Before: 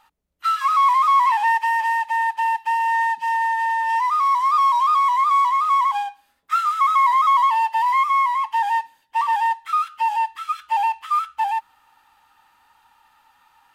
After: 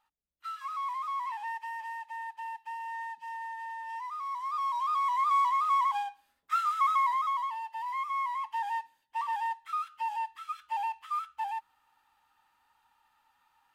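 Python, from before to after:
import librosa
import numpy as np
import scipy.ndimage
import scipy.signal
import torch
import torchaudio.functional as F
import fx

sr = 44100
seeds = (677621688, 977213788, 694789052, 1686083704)

y = fx.gain(x, sr, db=fx.line((4.23, -18.5), (5.33, -8.5), (6.89, -8.5), (7.62, -19.0), (8.33, -12.5)))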